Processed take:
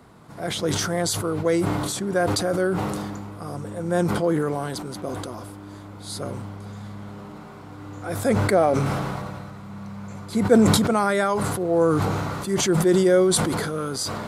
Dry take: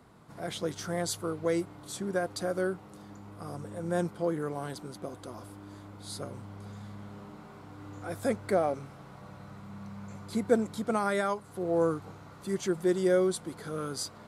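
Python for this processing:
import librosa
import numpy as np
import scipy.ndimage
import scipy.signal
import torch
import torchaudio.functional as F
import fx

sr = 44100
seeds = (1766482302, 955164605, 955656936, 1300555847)

y = fx.sustainer(x, sr, db_per_s=24.0)
y = y * 10.0 ** (7.0 / 20.0)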